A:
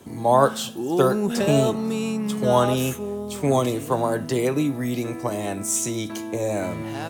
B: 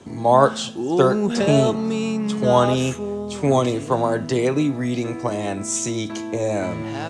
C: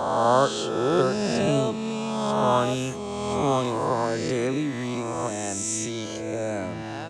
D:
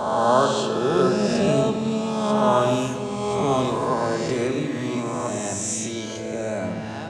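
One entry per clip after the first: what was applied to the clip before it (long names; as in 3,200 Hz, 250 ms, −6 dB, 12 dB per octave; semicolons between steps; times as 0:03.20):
low-pass filter 7,600 Hz 24 dB per octave; level +2.5 dB
peak hold with a rise ahead of every peak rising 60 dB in 1.95 s; level −8 dB
rectangular room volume 2,900 cubic metres, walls mixed, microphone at 1.4 metres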